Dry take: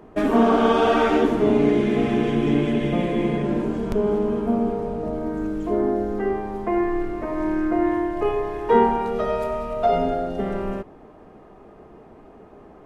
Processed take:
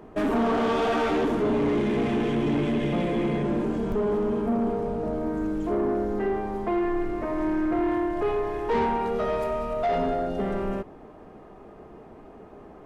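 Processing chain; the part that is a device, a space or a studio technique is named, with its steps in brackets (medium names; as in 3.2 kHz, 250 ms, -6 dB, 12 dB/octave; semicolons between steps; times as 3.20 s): saturation between pre-emphasis and de-emphasis (treble shelf 2.2 kHz +11.5 dB; saturation -19.5 dBFS, distortion -9 dB; treble shelf 2.2 kHz -11.5 dB)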